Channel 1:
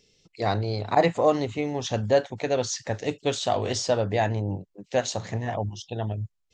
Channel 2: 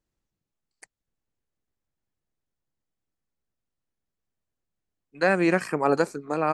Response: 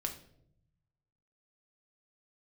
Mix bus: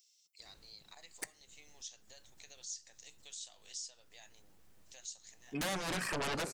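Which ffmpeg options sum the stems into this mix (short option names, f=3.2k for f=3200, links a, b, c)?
-filter_complex "[0:a]acompressor=threshold=-28dB:ratio=3,crystalizer=i=4:c=0,aderivative,volume=-13.5dB,asplit=3[a][b][c];[b]volume=-15.5dB[d];[1:a]acompressor=threshold=-34dB:ratio=2.5,aeval=exprs='0.0794*sin(PI/2*6.31*val(0)/0.0794)':c=same,adelay=400,volume=-2dB,asplit=2[e][f];[f]volume=-12.5dB[g];[c]apad=whole_len=305626[h];[e][h]sidechaincompress=threshold=-50dB:ratio=8:attack=16:release=164[i];[2:a]atrim=start_sample=2205[j];[d][g]amix=inputs=2:normalize=0[k];[k][j]afir=irnorm=-1:irlink=0[l];[a][i][l]amix=inputs=3:normalize=0,acompressor=threshold=-54dB:ratio=1.5"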